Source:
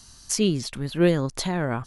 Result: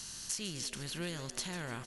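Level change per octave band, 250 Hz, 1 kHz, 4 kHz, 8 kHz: -19.5 dB, -14.5 dB, -7.5 dB, -7.0 dB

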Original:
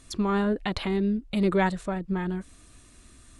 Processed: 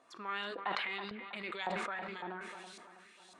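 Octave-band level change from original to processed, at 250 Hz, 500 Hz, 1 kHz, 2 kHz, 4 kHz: -23.0 dB, -15.5 dB, -7.0 dB, -3.5 dB, -4.0 dB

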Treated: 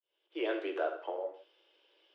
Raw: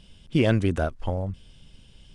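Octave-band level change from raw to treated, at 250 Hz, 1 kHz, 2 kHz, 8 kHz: -15.5 dB, -5.0 dB, -8.0 dB, no reading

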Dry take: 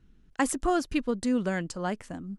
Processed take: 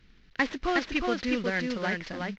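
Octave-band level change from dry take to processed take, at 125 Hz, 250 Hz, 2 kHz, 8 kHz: -2.0 dB, -2.0 dB, +7.0 dB, -11.5 dB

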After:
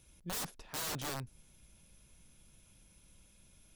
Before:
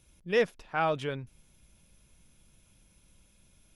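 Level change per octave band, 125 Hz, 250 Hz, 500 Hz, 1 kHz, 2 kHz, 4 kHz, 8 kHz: -5.5 dB, -9.0 dB, -19.5 dB, -12.5 dB, -11.5 dB, -0.5 dB, +14.0 dB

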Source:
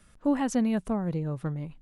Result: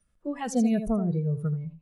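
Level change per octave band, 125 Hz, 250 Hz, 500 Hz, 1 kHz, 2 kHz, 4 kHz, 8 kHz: +4.0 dB, +0.5 dB, +0.5 dB, -1.5 dB, -2.5 dB, no reading, +1.0 dB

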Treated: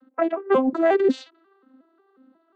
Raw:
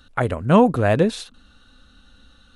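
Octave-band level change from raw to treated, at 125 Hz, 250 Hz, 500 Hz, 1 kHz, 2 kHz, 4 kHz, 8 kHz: under -25 dB, -4.5 dB, -0.5 dB, -4.0 dB, -4.0 dB, -7.5 dB, under -10 dB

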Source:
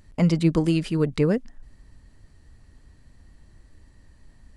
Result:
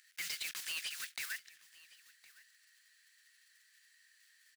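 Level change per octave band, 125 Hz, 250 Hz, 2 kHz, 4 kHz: under -40 dB, under -40 dB, -3.0 dB, -2.0 dB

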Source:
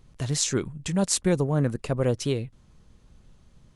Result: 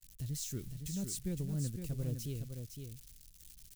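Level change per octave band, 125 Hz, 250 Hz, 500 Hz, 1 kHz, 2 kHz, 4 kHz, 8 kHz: -10.0 dB, -13.5 dB, -21.5 dB, under -25 dB, -22.0 dB, -16.5 dB, -14.0 dB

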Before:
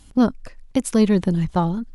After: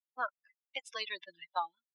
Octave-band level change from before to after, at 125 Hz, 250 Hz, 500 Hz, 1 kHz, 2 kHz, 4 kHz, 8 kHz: under -40 dB, under -40 dB, -23.5 dB, -9.0 dB, -3.5 dB, -4.0 dB, -23.5 dB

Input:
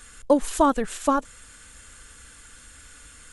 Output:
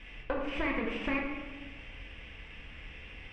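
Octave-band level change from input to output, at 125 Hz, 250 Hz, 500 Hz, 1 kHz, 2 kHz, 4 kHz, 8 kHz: 0.0 dB, -10.5 dB, -13.0 dB, -15.5 dB, +3.5 dB, -3.0 dB, under -30 dB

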